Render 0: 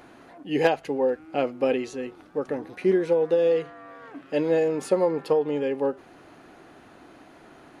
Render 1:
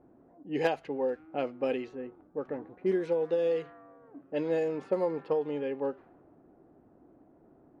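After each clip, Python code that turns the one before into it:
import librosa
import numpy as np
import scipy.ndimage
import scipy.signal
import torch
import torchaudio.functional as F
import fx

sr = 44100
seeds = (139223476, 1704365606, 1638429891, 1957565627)

y = fx.env_lowpass(x, sr, base_hz=480.0, full_db=-17.5)
y = y * 10.0 ** (-7.0 / 20.0)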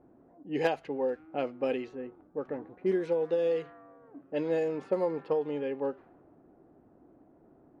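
y = x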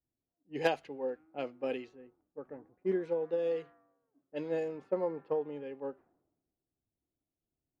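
y = fx.band_widen(x, sr, depth_pct=100)
y = y * 10.0 ** (-6.0 / 20.0)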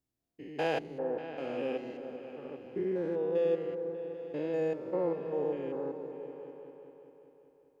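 y = fx.spec_steps(x, sr, hold_ms=200)
y = fx.echo_opening(y, sr, ms=197, hz=200, octaves=2, feedback_pct=70, wet_db=-6)
y = y * 10.0 ** (4.0 / 20.0)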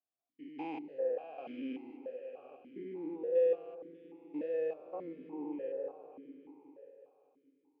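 y = fx.vowel_held(x, sr, hz=3.4)
y = y * 10.0 ** (3.0 / 20.0)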